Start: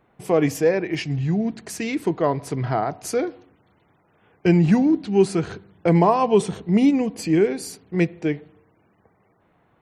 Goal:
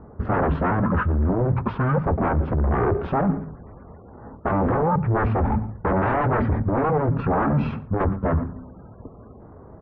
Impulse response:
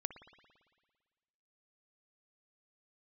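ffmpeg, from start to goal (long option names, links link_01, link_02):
-filter_complex "[0:a]asplit=2[link_01][link_02];[link_02]acontrast=73,volume=3dB[link_03];[link_01][link_03]amix=inputs=2:normalize=0,aeval=exprs='0.237*(abs(mod(val(0)/0.237+3,4)-2)-1)':channel_layout=same,lowshelf=frequency=120:gain=7,asplit=2[link_04][link_05];[link_05]adelay=15,volume=-10dB[link_06];[link_04][link_06]amix=inputs=2:normalize=0,volume=13dB,asoftclip=hard,volume=-13dB,highpass=frequency=68:poles=1,asplit=2[link_07][link_08];[link_08]adelay=116.6,volume=-21dB,highshelf=frequency=4000:gain=-2.62[link_09];[link_07][link_09]amix=inputs=2:normalize=0,asetrate=24750,aresample=44100,atempo=1.7818,lowpass=frequency=1500:width=0.5412,lowpass=frequency=1500:width=1.3066,areverse,acompressor=threshold=-24dB:ratio=6,areverse,volume=5.5dB"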